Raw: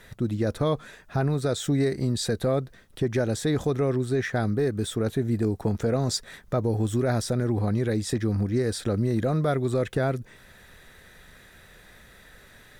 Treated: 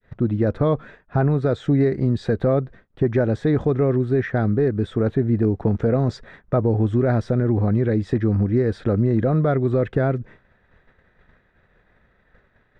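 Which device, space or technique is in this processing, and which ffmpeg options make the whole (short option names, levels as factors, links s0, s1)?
hearing-loss simulation: -af "adynamicequalizer=threshold=0.00891:dfrequency=910:dqfactor=1.1:tfrequency=910:tqfactor=1.1:attack=5:release=100:ratio=0.375:range=2:mode=cutabove:tftype=bell,lowpass=1700,agate=range=0.0224:threshold=0.00708:ratio=3:detection=peak,volume=2"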